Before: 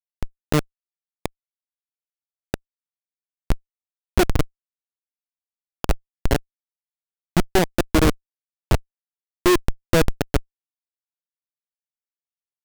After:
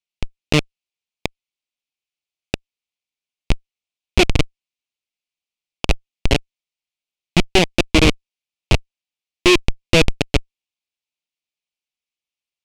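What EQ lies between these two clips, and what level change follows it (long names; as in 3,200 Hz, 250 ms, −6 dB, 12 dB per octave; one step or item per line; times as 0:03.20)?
high-frequency loss of the air 71 metres
high shelf with overshoot 2,000 Hz +6.5 dB, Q 3
+3.0 dB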